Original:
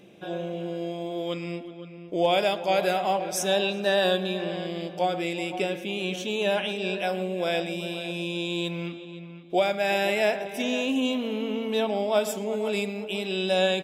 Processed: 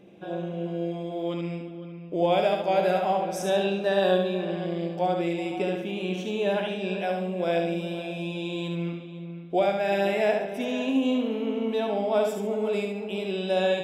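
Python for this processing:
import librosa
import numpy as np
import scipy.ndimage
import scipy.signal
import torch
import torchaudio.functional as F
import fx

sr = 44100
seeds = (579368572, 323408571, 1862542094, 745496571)

y = fx.high_shelf(x, sr, hz=2300.0, db=-11.0)
y = fx.echo_feedback(y, sr, ms=71, feedback_pct=33, wet_db=-4.5)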